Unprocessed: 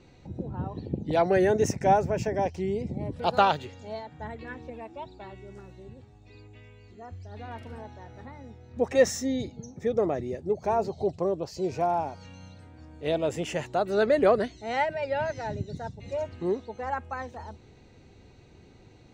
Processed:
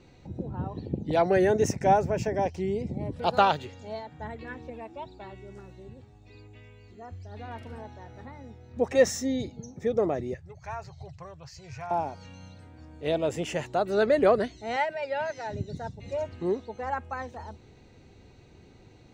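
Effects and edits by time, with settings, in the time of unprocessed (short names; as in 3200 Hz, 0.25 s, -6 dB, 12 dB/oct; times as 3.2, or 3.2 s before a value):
10.34–11.91 EQ curve 140 Hz 0 dB, 210 Hz -25 dB, 350 Hz -26 dB, 1800 Hz +3 dB, 3500 Hz -6 dB, 6500 Hz -3 dB, 10000 Hz -11 dB
14.76–15.53 HPF 450 Hz 6 dB/oct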